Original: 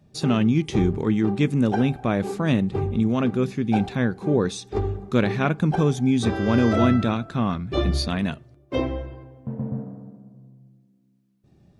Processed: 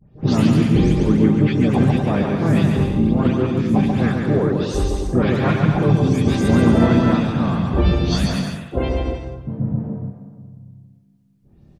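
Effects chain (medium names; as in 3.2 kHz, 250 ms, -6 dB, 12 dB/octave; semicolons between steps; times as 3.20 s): delay that grows with frequency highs late, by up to 233 ms; bass shelf 130 Hz +10 dB; on a send: bouncing-ball echo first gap 140 ms, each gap 0.7×, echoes 5; on the sum: harmony voices -5 st -5 dB, +5 st -10 dB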